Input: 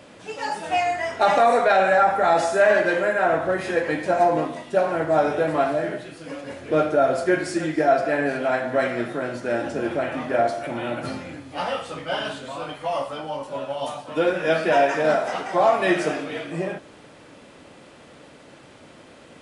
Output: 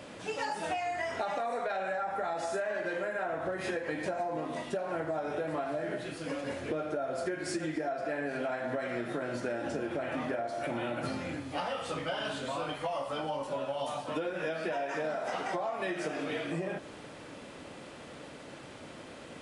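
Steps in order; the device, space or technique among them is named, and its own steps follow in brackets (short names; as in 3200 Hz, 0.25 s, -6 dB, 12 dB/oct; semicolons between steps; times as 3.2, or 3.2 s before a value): serial compression, peaks first (compressor, threshold -26 dBFS, peak gain reduction 13 dB; compressor 3:1, threshold -32 dBFS, peak gain reduction 7 dB)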